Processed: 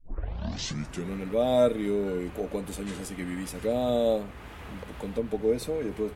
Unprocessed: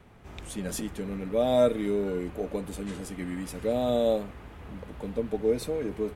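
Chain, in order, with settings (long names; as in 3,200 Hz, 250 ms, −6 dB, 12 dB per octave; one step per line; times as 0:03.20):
turntable start at the beginning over 1.14 s
one half of a high-frequency compander encoder only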